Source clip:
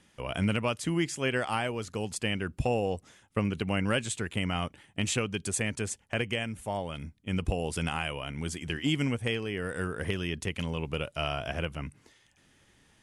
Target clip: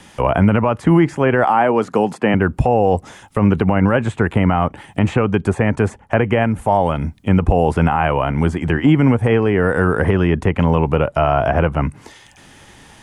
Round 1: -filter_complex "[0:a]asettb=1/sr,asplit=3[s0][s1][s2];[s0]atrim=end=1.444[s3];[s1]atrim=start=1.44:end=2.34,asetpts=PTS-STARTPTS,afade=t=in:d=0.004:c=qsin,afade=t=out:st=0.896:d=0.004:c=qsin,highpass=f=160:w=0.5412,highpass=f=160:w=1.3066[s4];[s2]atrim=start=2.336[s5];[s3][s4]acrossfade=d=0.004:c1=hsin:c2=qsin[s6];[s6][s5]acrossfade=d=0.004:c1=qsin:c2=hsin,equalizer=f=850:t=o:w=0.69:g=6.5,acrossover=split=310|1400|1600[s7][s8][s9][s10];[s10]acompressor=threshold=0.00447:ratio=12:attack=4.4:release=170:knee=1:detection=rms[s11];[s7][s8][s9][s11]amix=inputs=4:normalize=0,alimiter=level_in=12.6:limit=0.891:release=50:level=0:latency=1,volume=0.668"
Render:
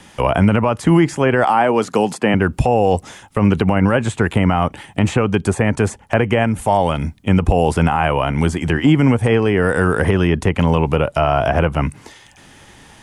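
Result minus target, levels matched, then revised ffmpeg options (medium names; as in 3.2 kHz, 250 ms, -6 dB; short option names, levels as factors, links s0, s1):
compression: peak gain reduction -10 dB
-filter_complex "[0:a]asettb=1/sr,asplit=3[s0][s1][s2];[s0]atrim=end=1.444[s3];[s1]atrim=start=1.44:end=2.34,asetpts=PTS-STARTPTS,afade=t=in:d=0.004:c=qsin,afade=t=out:st=0.896:d=0.004:c=qsin,highpass=f=160:w=0.5412,highpass=f=160:w=1.3066[s4];[s2]atrim=start=2.336[s5];[s3][s4]acrossfade=d=0.004:c1=hsin:c2=qsin[s6];[s6][s5]acrossfade=d=0.004:c1=qsin:c2=hsin,equalizer=f=850:t=o:w=0.69:g=6.5,acrossover=split=310|1400|1600[s7][s8][s9][s10];[s10]acompressor=threshold=0.00126:ratio=12:attack=4.4:release=170:knee=1:detection=rms[s11];[s7][s8][s9][s11]amix=inputs=4:normalize=0,alimiter=level_in=12.6:limit=0.891:release=50:level=0:latency=1,volume=0.668"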